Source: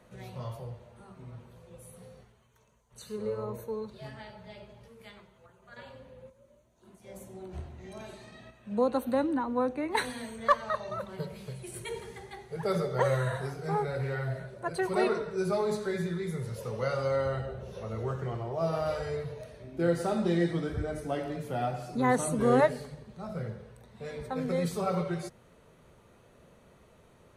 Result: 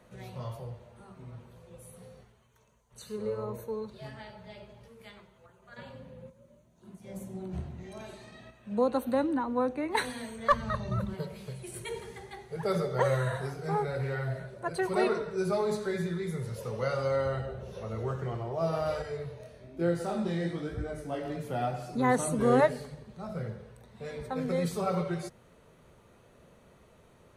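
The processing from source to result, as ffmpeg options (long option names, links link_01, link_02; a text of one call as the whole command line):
ffmpeg -i in.wav -filter_complex "[0:a]asettb=1/sr,asplit=3[link_01][link_02][link_03];[link_01]atrim=end=5.784[link_04];[link_02]atrim=start=5.78:end=7.83,asetpts=PTS-STARTPTS,afade=type=in:duration=0.004:curve=qsin,afade=type=out:start_time=2.046:duration=0.004:curve=qsin,equalizer=frequency=170:width=1.5:gain=11[link_05];[link_03]atrim=start=7.826[link_06];[link_04][link_05]acrossfade=duration=0.004:curve1=hsin:curve2=qsin[link_07];[link_07][link_06]acrossfade=duration=0.004:curve1=qsin:curve2=hsin,asplit=3[link_08][link_09][link_10];[link_08]afade=type=out:start_time=10.51:duration=0.02[link_11];[link_09]asubboost=boost=8:cutoff=210,afade=type=in:start_time=10.51:duration=0.02,afade=type=out:start_time=11.13:duration=0.02[link_12];[link_10]afade=type=in:start_time=11.13:duration=0.02[link_13];[link_11][link_12][link_13]amix=inputs=3:normalize=0,asettb=1/sr,asplit=3[link_14][link_15][link_16];[link_14]atrim=end=19.024[link_17];[link_15]atrim=start=19.02:end=21.25,asetpts=PTS-STARTPTS,afade=type=in:duration=0.004:curve=qsin,afade=type=out:start_time=2.226:duration=0.004:curve=qsin,flanger=delay=17:depth=8:speed=1.1[link_18];[link_16]atrim=start=21.246[link_19];[link_17][link_18]acrossfade=duration=0.004:curve1=hsin:curve2=qsin[link_20];[link_20][link_19]acrossfade=duration=0.004:curve1=qsin:curve2=hsin" out.wav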